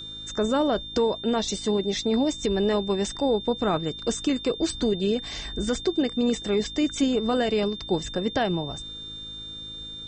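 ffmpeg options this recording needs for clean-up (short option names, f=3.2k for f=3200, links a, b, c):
-af "bandreject=f=53.3:t=h:w=4,bandreject=f=106.6:t=h:w=4,bandreject=f=159.9:t=h:w=4,bandreject=f=213.2:t=h:w=4,bandreject=f=266.5:t=h:w=4,bandreject=f=319.8:t=h:w=4,bandreject=f=3.6k:w=30"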